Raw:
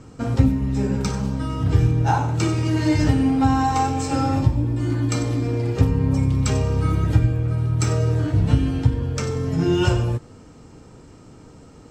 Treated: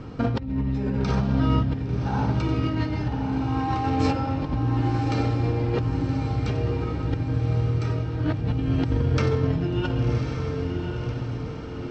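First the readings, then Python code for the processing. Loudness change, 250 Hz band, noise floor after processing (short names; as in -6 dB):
-4.5 dB, -3.5 dB, -32 dBFS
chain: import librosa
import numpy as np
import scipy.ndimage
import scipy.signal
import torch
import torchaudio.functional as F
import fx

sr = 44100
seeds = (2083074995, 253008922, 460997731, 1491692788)

p1 = scipy.signal.sosfilt(scipy.signal.butter(4, 4400.0, 'lowpass', fs=sr, output='sos'), x)
p2 = fx.over_compress(p1, sr, threshold_db=-26.0, ratio=-1.0)
y = p2 + fx.echo_diffused(p2, sr, ms=1098, feedback_pct=51, wet_db=-5, dry=0)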